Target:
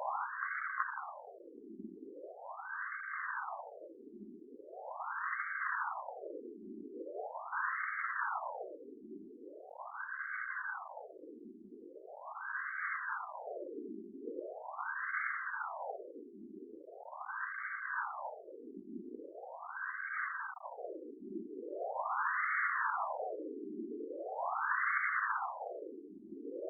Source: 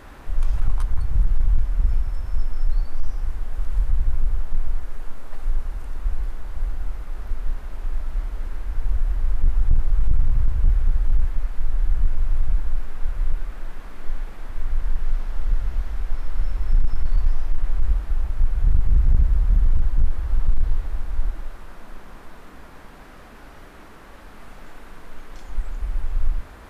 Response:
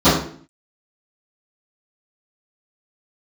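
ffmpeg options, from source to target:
-filter_complex "[0:a]aeval=exprs='if(lt(val(0),0),0.708*val(0),val(0))':c=same,afreqshift=18,asplit=2[s0][s1];[s1]acrusher=samples=28:mix=1:aa=0.000001,volume=0.316[s2];[s0][s2]amix=inputs=2:normalize=0,tiltshelf=f=640:g=-9,areverse,acompressor=threshold=0.0316:ratio=5,areverse,afftfilt=real='re*between(b*sr/1024,290*pow(1600/290,0.5+0.5*sin(2*PI*0.41*pts/sr))/1.41,290*pow(1600/290,0.5+0.5*sin(2*PI*0.41*pts/sr))*1.41)':imag='im*between(b*sr/1024,290*pow(1600/290,0.5+0.5*sin(2*PI*0.41*pts/sr))/1.41,290*pow(1600/290,0.5+0.5*sin(2*PI*0.41*pts/sr))*1.41)':win_size=1024:overlap=0.75,volume=4.73"

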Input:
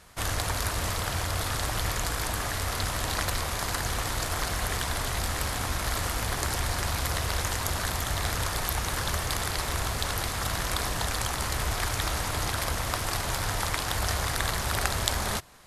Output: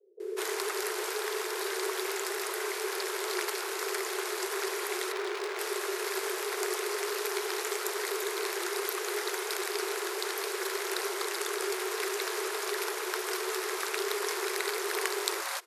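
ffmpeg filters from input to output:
-filter_complex "[0:a]acrossover=split=180[s0][s1];[s1]adelay=200[s2];[s0][s2]amix=inputs=2:normalize=0,asettb=1/sr,asplit=3[s3][s4][s5];[s3]atrim=end=5.124[s6];[s4]atrim=start=5.12:end=5.59,asetpts=PTS-STARTPTS,afade=t=in:d=0.004:c=qsin,afade=t=out:st=0.466:d=0.004:c=qsin,adynamicsmooth=sensitivity=8:basefreq=1200[s7];[s5]atrim=start=5.586[s8];[s6][s7]acrossfade=d=0.004:c1=hsin:c2=qsin[s9];[s9][s8]acrossfade=d=0.004:c1=qsin:c2=hsin,afreqshift=340,volume=0.631"

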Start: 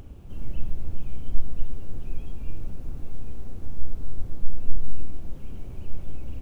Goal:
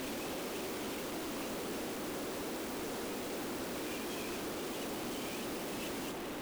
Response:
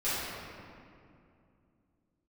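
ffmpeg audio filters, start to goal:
-af "areverse,highpass=f=280:w=0.5412,highpass=f=280:w=1.3066,aeval=exprs='0.0141*sin(PI/2*3.55*val(0)/0.0141)':c=same,aeval=exprs='0.0141*(cos(1*acos(clip(val(0)/0.0141,-1,1)))-cos(1*PI/2))+0.00631*(cos(5*acos(clip(val(0)/0.0141,-1,1)))-cos(5*PI/2))':c=same"

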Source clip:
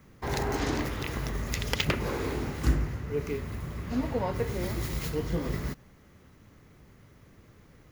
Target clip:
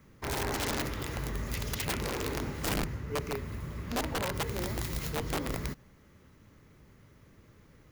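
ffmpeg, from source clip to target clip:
-af "bandreject=f=730:w=13,aeval=exprs='(mod(14.1*val(0)+1,2)-1)/14.1':c=same,volume=0.75"

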